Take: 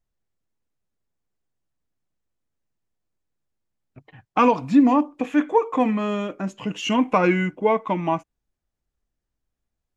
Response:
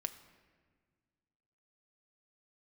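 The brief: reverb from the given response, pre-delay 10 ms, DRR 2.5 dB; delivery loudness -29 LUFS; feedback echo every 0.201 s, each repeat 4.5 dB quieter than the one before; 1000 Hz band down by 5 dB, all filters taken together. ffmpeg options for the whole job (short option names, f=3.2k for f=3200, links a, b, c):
-filter_complex "[0:a]equalizer=f=1k:t=o:g=-6,aecho=1:1:201|402|603|804|1005|1206|1407|1608|1809:0.596|0.357|0.214|0.129|0.0772|0.0463|0.0278|0.0167|0.01,asplit=2[a][b];[1:a]atrim=start_sample=2205,adelay=10[c];[b][c]afir=irnorm=-1:irlink=0,volume=-1.5dB[d];[a][d]amix=inputs=2:normalize=0,volume=-9.5dB"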